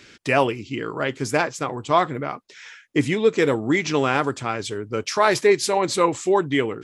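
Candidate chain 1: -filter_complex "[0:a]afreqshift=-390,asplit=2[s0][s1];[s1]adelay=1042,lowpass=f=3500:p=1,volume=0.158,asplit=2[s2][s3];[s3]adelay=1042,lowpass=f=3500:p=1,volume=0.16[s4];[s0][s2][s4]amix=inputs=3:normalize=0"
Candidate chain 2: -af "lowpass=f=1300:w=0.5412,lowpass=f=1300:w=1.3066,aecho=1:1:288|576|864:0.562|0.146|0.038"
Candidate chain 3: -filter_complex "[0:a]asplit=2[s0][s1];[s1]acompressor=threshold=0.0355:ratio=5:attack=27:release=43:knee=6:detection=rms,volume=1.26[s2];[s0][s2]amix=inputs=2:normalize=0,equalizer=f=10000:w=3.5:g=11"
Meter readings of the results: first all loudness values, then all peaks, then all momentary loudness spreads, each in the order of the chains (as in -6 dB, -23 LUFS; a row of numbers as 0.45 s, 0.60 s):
-24.0 LUFS, -22.0 LUFS, -18.5 LUFS; -4.5 dBFS, -4.5 dBFS, -1.0 dBFS; 9 LU, 8 LU, 8 LU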